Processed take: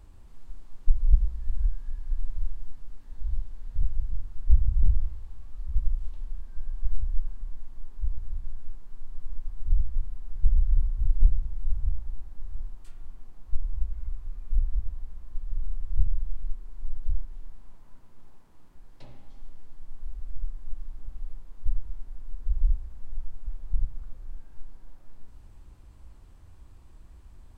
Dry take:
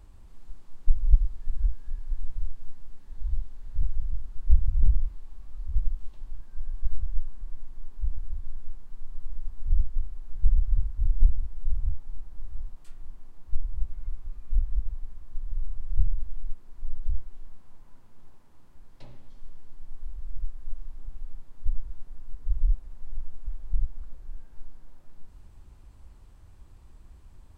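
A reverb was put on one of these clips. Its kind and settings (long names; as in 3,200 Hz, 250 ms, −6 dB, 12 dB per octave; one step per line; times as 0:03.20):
spring reverb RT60 1.6 s, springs 36 ms, chirp 45 ms, DRR 8.5 dB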